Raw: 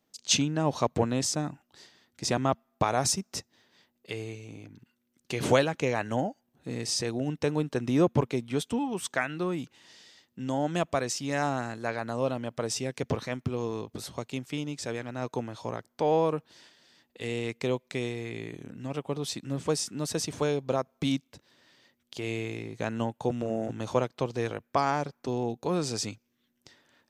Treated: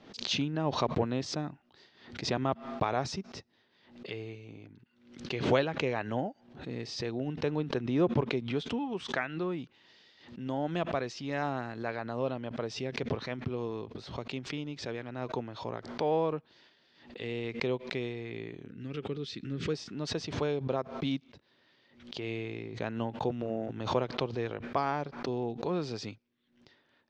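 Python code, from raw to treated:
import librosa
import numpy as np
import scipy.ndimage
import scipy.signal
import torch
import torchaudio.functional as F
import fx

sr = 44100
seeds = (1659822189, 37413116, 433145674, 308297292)

y = fx.band_shelf(x, sr, hz=780.0, db=-14.5, octaves=1.1, at=(18.67, 19.74))
y = scipy.signal.sosfilt(scipy.signal.butter(4, 4500.0, 'lowpass', fs=sr, output='sos'), y)
y = fx.peak_eq(y, sr, hz=390.0, db=3.5, octaves=0.25)
y = fx.pre_swell(y, sr, db_per_s=95.0)
y = y * librosa.db_to_amplitude(-4.5)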